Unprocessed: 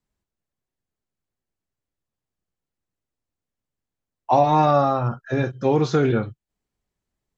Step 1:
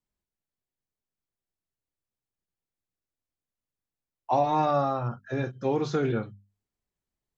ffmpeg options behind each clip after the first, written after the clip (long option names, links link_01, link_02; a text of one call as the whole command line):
ffmpeg -i in.wav -af "bandreject=frequency=50:width_type=h:width=6,bandreject=frequency=100:width_type=h:width=6,bandreject=frequency=150:width_type=h:width=6,bandreject=frequency=200:width_type=h:width=6,bandreject=frequency=250:width_type=h:width=6,volume=-7dB" out.wav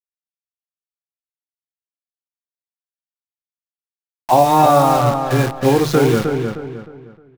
ffmpeg -i in.wav -filter_complex "[0:a]dynaudnorm=framelen=590:gausssize=5:maxgain=14.5dB,acrusher=bits=5:dc=4:mix=0:aa=0.000001,asplit=2[link_01][link_02];[link_02]adelay=309,lowpass=frequency=2900:poles=1,volume=-5.5dB,asplit=2[link_03][link_04];[link_04]adelay=309,lowpass=frequency=2900:poles=1,volume=0.35,asplit=2[link_05][link_06];[link_06]adelay=309,lowpass=frequency=2900:poles=1,volume=0.35,asplit=2[link_07][link_08];[link_08]adelay=309,lowpass=frequency=2900:poles=1,volume=0.35[link_09];[link_03][link_05][link_07][link_09]amix=inputs=4:normalize=0[link_10];[link_01][link_10]amix=inputs=2:normalize=0" out.wav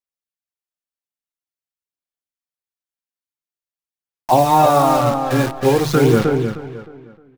ffmpeg -i in.wav -af "aphaser=in_gain=1:out_gain=1:delay=3.9:decay=0.33:speed=0.48:type=sinusoidal,volume=-1dB" out.wav